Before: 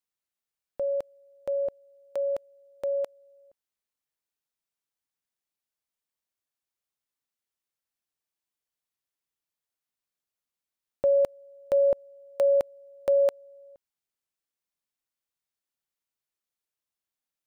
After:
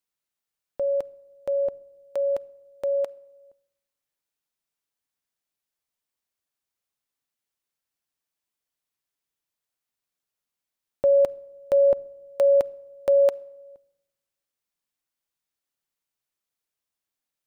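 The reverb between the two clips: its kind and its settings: simulated room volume 3700 m³, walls furnished, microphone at 0.31 m; trim +2.5 dB

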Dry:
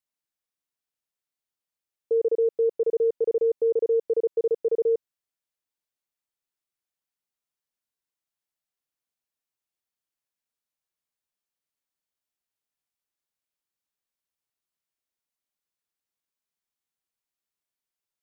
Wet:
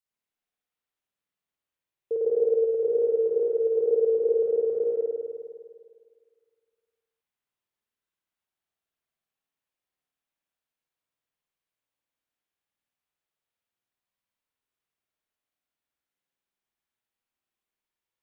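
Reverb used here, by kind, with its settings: spring tank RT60 1.9 s, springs 51 ms, chirp 55 ms, DRR -7 dB; trim -4.5 dB

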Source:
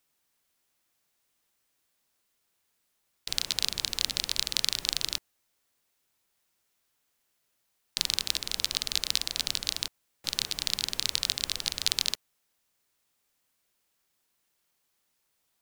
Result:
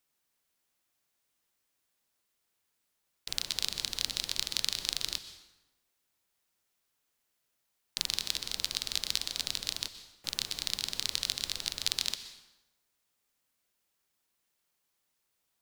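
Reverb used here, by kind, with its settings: plate-style reverb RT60 1 s, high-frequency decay 0.75×, pre-delay 110 ms, DRR 11.5 dB; trim -4 dB

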